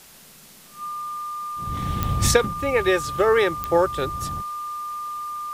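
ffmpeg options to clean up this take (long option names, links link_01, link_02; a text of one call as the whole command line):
ffmpeg -i in.wav -af "adeclick=threshold=4,bandreject=frequency=1200:width=30,afftdn=noise_reduction=19:noise_floor=-48" out.wav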